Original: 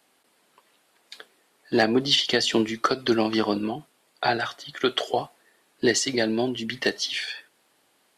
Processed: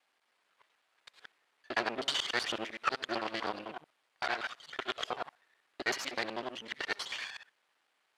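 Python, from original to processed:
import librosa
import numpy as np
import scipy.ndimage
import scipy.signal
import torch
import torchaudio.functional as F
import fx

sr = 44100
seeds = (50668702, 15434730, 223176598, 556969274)

y = fx.local_reverse(x, sr, ms=63.0)
y = np.maximum(y, 0.0)
y = fx.bandpass_q(y, sr, hz=1700.0, q=0.69)
y = F.gain(torch.from_numpy(y), -2.0).numpy()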